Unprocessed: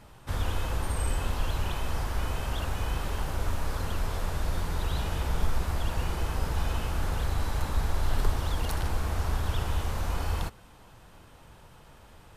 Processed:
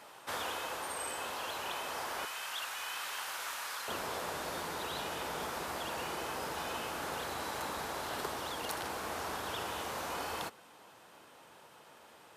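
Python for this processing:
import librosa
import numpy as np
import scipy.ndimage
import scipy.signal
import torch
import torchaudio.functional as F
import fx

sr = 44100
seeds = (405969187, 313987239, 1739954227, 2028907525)

y = fx.highpass(x, sr, hz=fx.steps((0.0, 490.0), (2.25, 1300.0), (3.88, 330.0)), slope=12)
y = fx.rider(y, sr, range_db=10, speed_s=0.5)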